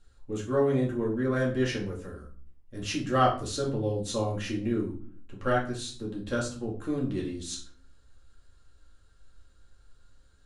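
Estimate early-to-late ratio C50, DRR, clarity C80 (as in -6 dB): 8.5 dB, -4.0 dB, 14.0 dB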